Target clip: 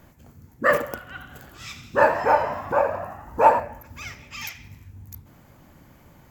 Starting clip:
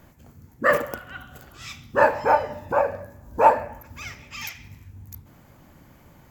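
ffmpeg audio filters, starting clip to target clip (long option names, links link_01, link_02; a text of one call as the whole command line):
ffmpeg -i in.wav -filter_complex "[0:a]asettb=1/sr,asplit=3[link_01][link_02][link_03];[link_01]atrim=end=1.064[link_04];[link_02]atrim=start=1.06:end=3.6,asetpts=PTS-STARTPTS,afade=type=in:duration=0.004:curve=qsin,afade=type=out:start_time=2.536:duration=0.004:curve=qsin,asplit=9[link_05][link_06][link_07][link_08][link_09][link_10][link_11][link_12][link_13];[link_06]adelay=85,afreqshift=57,volume=-11dB[link_14];[link_07]adelay=170,afreqshift=114,volume=-15dB[link_15];[link_08]adelay=255,afreqshift=171,volume=-19dB[link_16];[link_09]adelay=340,afreqshift=228,volume=-23dB[link_17];[link_10]adelay=425,afreqshift=285,volume=-27.1dB[link_18];[link_11]adelay=510,afreqshift=342,volume=-31.1dB[link_19];[link_12]adelay=595,afreqshift=399,volume=-35.1dB[link_20];[link_13]adelay=680,afreqshift=456,volume=-39.1dB[link_21];[link_05][link_14][link_15][link_16][link_17][link_18][link_19][link_20][link_21]amix=inputs=9:normalize=0,atrim=end_sample=112014[link_22];[link_03]atrim=start=3.596[link_23];[link_04][link_22]acrossfade=duration=0.004:curve1=hsin:curve2=qsin[link_24];[link_24][link_23]acrossfade=duration=0.004:curve1=qsin:curve2=hsin" out.wav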